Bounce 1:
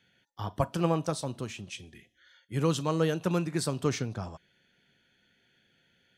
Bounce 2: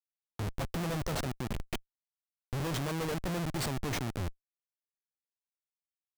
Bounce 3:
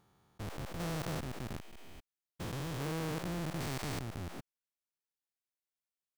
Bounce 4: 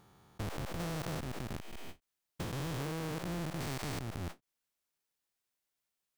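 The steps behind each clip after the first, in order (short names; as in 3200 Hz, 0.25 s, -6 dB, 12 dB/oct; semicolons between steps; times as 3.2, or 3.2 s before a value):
Schmitt trigger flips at -34 dBFS
stepped spectrum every 0.4 s; gain -1 dB
compressor, threshold -43 dBFS, peak gain reduction 8.5 dB; ending taper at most 380 dB/s; gain +7 dB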